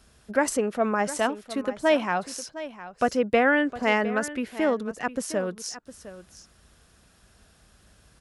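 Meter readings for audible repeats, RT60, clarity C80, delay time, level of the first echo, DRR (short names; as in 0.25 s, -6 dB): 1, none, none, 0.709 s, -14.5 dB, none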